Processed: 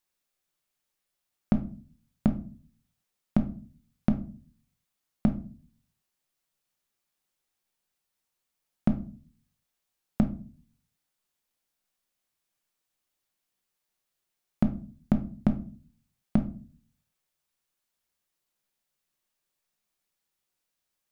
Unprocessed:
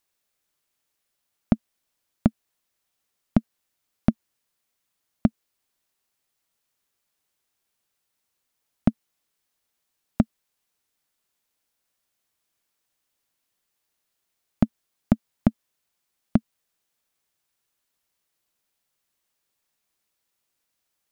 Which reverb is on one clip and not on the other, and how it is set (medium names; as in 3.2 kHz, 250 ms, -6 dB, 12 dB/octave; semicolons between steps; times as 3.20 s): simulated room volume 280 m³, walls furnished, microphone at 0.96 m; trim -5.5 dB